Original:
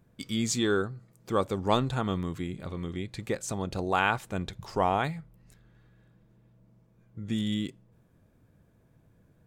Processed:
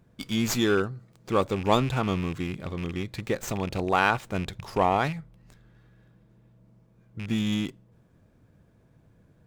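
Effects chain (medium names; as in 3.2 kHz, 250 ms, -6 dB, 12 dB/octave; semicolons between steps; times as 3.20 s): rattle on loud lows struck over -34 dBFS, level -31 dBFS; sliding maximum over 3 samples; trim +3 dB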